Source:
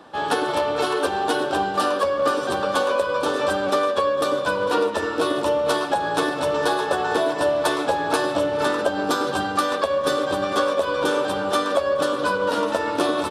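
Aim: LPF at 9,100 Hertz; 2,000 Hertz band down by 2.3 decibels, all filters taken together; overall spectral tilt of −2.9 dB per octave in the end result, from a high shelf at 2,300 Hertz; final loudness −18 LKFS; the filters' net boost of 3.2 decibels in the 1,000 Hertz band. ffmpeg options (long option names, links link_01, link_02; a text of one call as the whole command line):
ffmpeg -i in.wav -af "lowpass=9100,equalizer=frequency=1000:width_type=o:gain=6,equalizer=frequency=2000:width_type=o:gain=-4,highshelf=frequency=2300:gain=-6,volume=3dB" out.wav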